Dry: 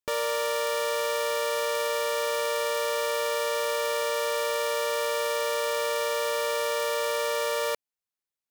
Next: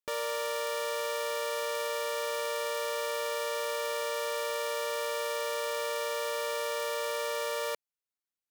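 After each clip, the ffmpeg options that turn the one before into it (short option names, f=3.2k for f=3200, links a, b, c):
-af "lowshelf=f=190:g=-5,volume=-5dB"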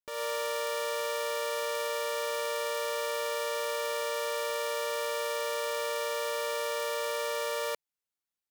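-af "dynaudnorm=f=110:g=3:m=7dB,volume=-6.5dB"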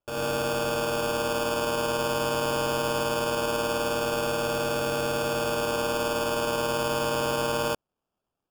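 -af "acrusher=samples=22:mix=1:aa=0.000001,volume=5.5dB"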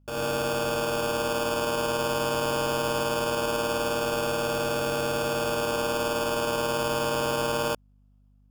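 -af "aeval=exprs='val(0)+0.00126*(sin(2*PI*50*n/s)+sin(2*PI*2*50*n/s)/2+sin(2*PI*3*50*n/s)/3+sin(2*PI*4*50*n/s)/4+sin(2*PI*5*50*n/s)/5)':c=same"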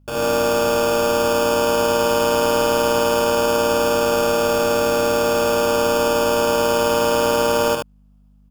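-af "aecho=1:1:75:0.631,volume=6.5dB"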